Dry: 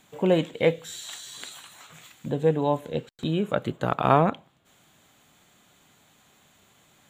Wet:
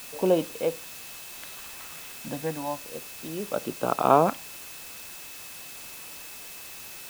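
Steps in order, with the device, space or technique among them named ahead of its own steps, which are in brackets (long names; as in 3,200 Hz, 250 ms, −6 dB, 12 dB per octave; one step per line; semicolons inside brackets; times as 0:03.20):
shortwave radio (band-pass filter 250–2,800 Hz; amplitude tremolo 0.49 Hz, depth 74%; auto-filter notch square 0.35 Hz 420–1,900 Hz; steady tone 2,600 Hz −52 dBFS; white noise bed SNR 12 dB)
level +2 dB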